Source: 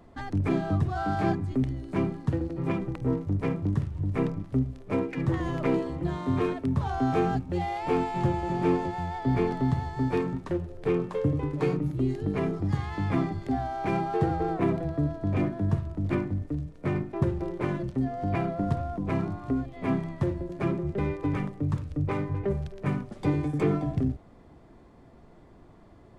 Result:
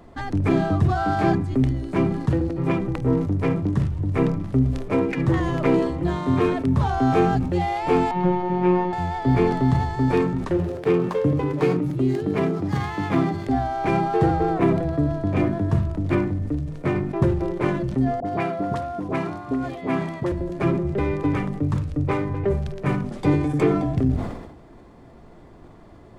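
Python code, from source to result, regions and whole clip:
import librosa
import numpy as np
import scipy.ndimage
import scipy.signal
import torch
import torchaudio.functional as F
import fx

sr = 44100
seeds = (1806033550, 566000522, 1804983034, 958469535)

y = fx.chain(x, sr, fx.lowpass(hz=2900.0, slope=12),
    fx.robotise(hz=180.0), at=(8.11, 8.93))
y = fx.chain(y, sr, fx.highpass(hz=120.0, slope=12),
    fx.running_max(window=3), at=(10.57, 13.46))
y = fx.chain(y, sr, fx.highpass(hz=290.0, slope=6),
    fx.dispersion(late='highs', ms=53.0, hz=760.0), at=(18.2, 20.32))
y = fx.hum_notches(y, sr, base_hz=50, count=5)
y = fx.sustainer(y, sr, db_per_s=58.0)
y = y * 10.0 ** (6.5 / 20.0)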